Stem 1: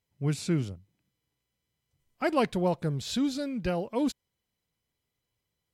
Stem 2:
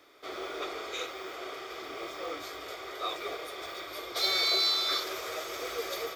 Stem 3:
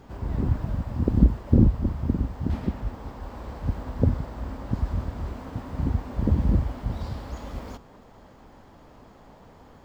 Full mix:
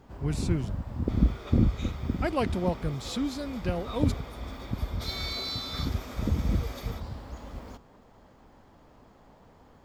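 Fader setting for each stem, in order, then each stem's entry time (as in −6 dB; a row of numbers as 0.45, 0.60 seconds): −2.5, −8.0, −5.5 decibels; 0.00, 0.85, 0.00 seconds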